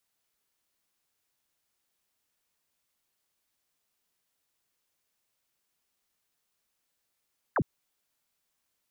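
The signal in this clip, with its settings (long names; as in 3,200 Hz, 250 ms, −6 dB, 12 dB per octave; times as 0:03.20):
single falling chirp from 1,900 Hz, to 93 Hz, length 0.06 s sine, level −23 dB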